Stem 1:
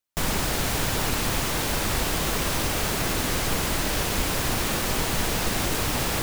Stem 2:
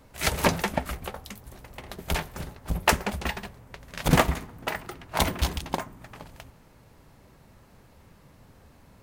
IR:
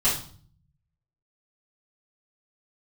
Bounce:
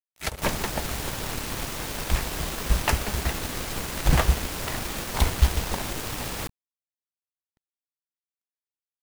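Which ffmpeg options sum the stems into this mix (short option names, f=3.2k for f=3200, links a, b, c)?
-filter_complex "[0:a]adelay=250,volume=-3.5dB[a];[1:a]asubboost=boost=6.5:cutoff=88,volume=-3dB[b];[a][b]amix=inputs=2:normalize=0,aeval=exprs='sgn(val(0))*max(abs(val(0))-0.0158,0)':c=same"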